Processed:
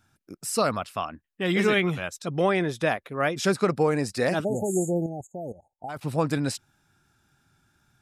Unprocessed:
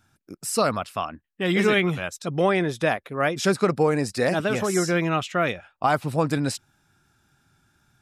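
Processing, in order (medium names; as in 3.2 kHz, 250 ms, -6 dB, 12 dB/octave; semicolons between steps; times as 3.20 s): 4.44–5.89 s: spectral selection erased 900–6400 Hz; 5.06–6.03 s: level held to a coarse grid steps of 16 dB; trim -2 dB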